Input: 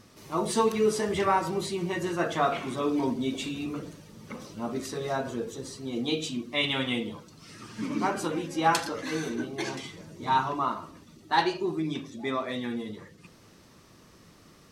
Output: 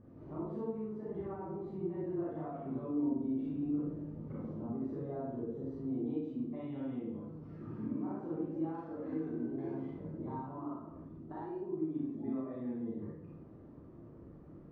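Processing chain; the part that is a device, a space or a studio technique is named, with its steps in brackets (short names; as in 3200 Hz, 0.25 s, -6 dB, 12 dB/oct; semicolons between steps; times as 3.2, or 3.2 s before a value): bell 1700 Hz +2.5 dB 0.77 oct; television next door (compressor 5:1, threshold -39 dBFS, peak gain reduction 19 dB; LPF 520 Hz 12 dB/oct; reverb RT60 0.70 s, pre-delay 29 ms, DRR -6 dB); gain -3.5 dB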